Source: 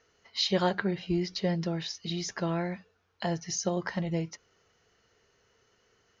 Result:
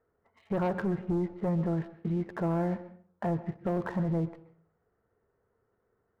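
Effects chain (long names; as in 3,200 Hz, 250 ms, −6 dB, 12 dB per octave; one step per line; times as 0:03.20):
Bessel low-pass filter 1,000 Hz, order 6
leveller curve on the samples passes 2
brickwall limiter −23.5 dBFS, peak gain reduction 8 dB
convolution reverb RT60 0.45 s, pre-delay 119 ms, DRR 13.5 dB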